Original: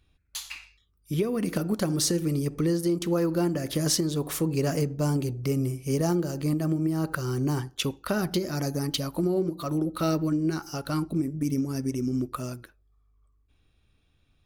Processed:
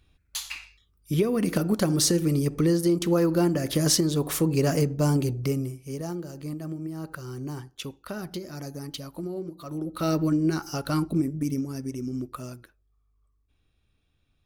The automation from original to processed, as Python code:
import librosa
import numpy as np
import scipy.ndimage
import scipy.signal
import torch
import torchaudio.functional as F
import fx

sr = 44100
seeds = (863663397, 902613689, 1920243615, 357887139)

y = fx.gain(x, sr, db=fx.line((5.41, 3.0), (5.81, -8.0), (9.65, -8.0), (10.21, 2.5), (11.21, 2.5), (11.79, -4.0)))